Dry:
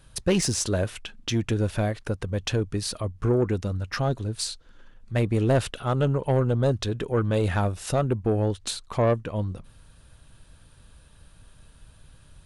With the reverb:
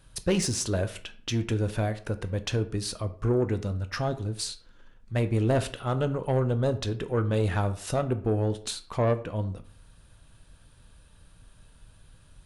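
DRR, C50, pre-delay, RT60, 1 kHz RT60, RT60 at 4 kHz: 10.0 dB, 15.5 dB, 13 ms, 0.50 s, 0.55 s, 0.30 s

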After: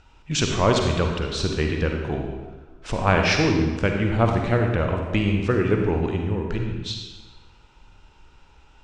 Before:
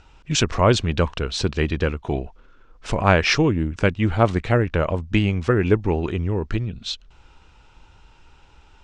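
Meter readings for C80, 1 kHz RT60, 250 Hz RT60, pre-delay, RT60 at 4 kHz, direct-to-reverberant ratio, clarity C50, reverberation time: 5.0 dB, 1.3 s, 1.4 s, 39 ms, 1.1 s, 2.0 dB, 3.0 dB, 1.3 s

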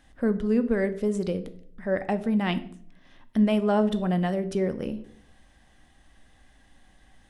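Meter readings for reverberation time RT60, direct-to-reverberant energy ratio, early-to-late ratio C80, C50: 0.60 s, 10.0 dB, 18.5 dB, 15.5 dB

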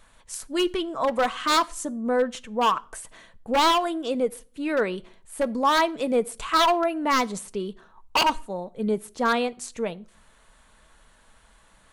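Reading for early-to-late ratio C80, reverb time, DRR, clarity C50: 28.5 dB, not exponential, 11.5 dB, 24.5 dB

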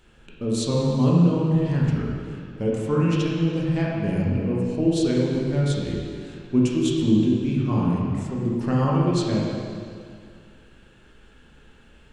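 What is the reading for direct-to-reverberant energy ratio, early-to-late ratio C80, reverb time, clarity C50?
-5.0 dB, 0.0 dB, 2.2 s, -1.5 dB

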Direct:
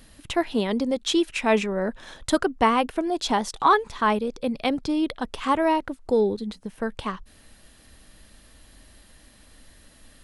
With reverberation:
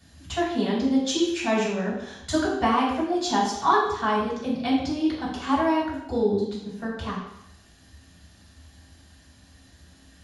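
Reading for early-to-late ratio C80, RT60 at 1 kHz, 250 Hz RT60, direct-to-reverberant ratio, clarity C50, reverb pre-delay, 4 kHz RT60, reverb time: 5.5 dB, 0.75 s, 0.80 s, -8.5 dB, 2.5 dB, 3 ms, 0.75 s, 0.75 s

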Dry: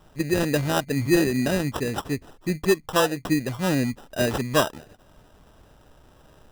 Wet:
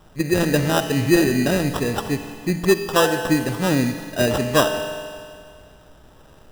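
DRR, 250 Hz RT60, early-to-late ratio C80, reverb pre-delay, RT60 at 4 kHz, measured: 7.0 dB, 2.1 s, 8.5 dB, 40 ms, 2.1 s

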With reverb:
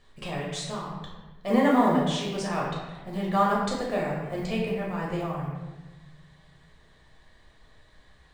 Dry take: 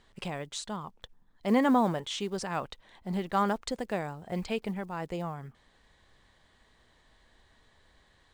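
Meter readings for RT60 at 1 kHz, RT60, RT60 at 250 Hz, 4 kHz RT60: 1.1 s, 1.2 s, 1.6 s, 0.90 s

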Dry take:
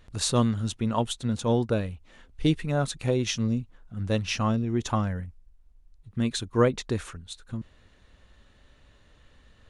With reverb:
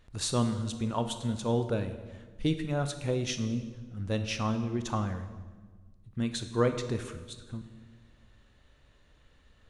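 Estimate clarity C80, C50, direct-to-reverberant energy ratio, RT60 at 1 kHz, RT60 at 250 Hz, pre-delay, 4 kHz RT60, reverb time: 11.5 dB, 10.0 dB, 8.0 dB, 1.3 s, 1.8 s, 22 ms, 1.1 s, 1.4 s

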